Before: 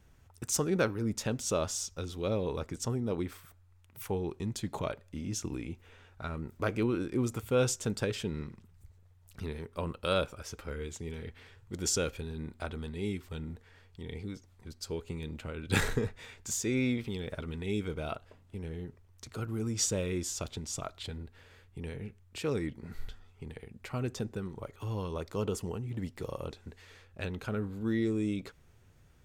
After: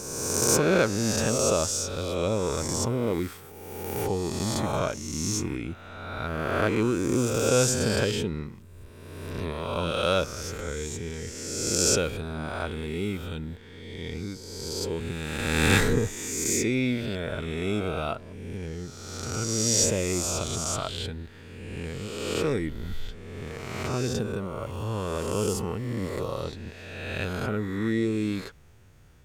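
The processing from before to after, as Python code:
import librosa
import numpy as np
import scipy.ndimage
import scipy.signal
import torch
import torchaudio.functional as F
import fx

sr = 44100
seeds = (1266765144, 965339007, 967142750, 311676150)

y = fx.spec_swells(x, sr, rise_s=1.69)
y = y * 10.0 ** (3.5 / 20.0)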